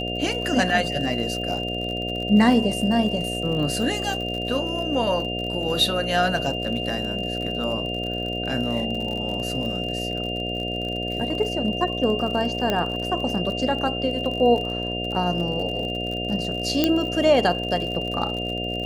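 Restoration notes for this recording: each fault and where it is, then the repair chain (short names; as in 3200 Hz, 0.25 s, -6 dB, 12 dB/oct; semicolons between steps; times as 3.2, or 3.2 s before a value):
buzz 60 Hz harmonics 12 -30 dBFS
crackle 50/s -30 dBFS
tone 2800 Hz -29 dBFS
12.7 pop -10 dBFS
16.84 pop -5 dBFS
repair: de-click; de-hum 60 Hz, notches 12; notch 2800 Hz, Q 30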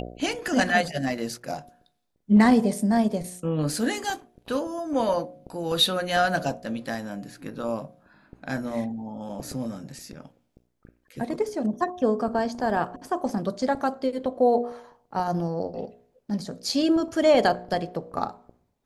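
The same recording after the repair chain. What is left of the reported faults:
12.7 pop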